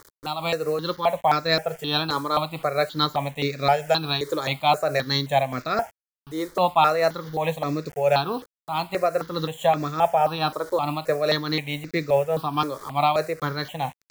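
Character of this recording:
a quantiser's noise floor 8 bits, dither none
tremolo triangle 4.7 Hz, depth 50%
notches that jump at a steady rate 3.8 Hz 720–3,100 Hz

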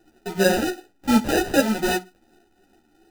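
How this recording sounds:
phaser sweep stages 6, 2.7 Hz, lowest notch 620–1,300 Hz
aliases and images of a low sample rate 1,100 Hz, jitter 0%
a shimmering, thickened sound

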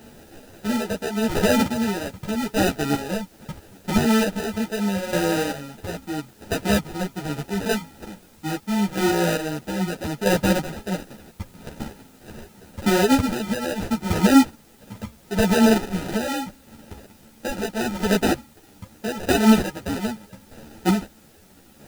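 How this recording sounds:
aliases and images of a low sample rate 1,100 Hz, jitter 0%
chopped level 0.78 Hz, depth 60%, duty 30%
a quantiser's noise floor 10 bits, dither triangular
a shimmering, thickened sound

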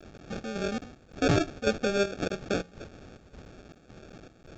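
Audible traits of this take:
a quantiser's noise floor 8 bits, dither triangular
chopped level 1.8 Hz, depth 65%, duty 70%
aliases and images of a low sample rate 1,000 Hz, jitter 0%
mu-law

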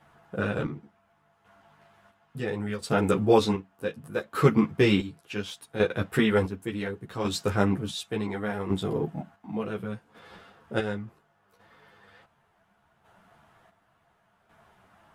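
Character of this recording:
chopped level 0.69 Hz, depth 60%, duty 45%
a shimmering, thickened sound

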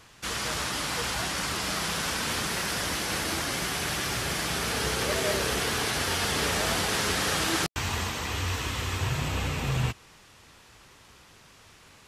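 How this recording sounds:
background noise floor −55 dBFS
spectral slope −3.5 dB per octave

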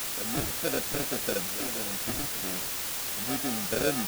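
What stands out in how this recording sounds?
aliases and images of a low sample rate 1,000 Hz, jitter 0%
tremolo saw up 0.68 Hz, depth 80%
a quantiser's noise floor 6 bits, dither triangular

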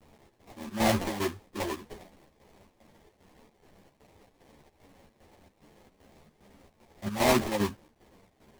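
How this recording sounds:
a quantiser's noise floor 10 bits, dither triangular
chopped level 2.5 Hz, depth 65%, duty 70%
aliases and images of a low sample rate 1,400 Hz, jitter 20%
a shimmering, thickened sound

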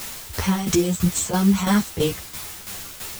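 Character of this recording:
a quantiser's noise floor 6 bits, dither triangular
tremolo saw down 3 Hz, depth 70%
a shimmering, thickened sound

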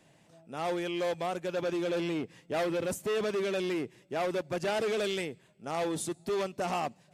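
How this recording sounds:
background noise floor −63 dBFS
spectral slope −4.5 dB per octave

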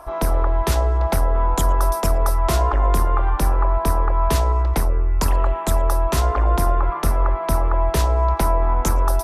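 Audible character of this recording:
background noise floor −26 dBFS
spectral slope −5.5 dB per octave

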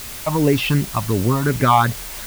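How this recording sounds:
phaser sweep stages 6, 2.7 Hz, lowest notch 400–1,300 Hz
a quantiser's noise floor 6 bits, dither triangular

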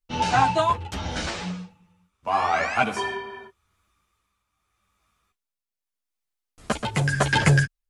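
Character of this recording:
tremolo triangle 0.84 Hz, depth 60%
a shimmering, thickened sound

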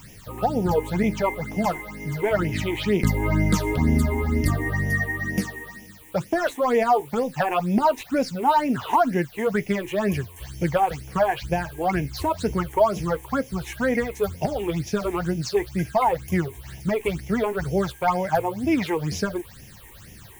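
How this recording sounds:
a quantiser's noise floor 8 bits, dither triangular
phaser sweep stages 8, 2.1 Hz, lowest notch 170–1,300 Hz

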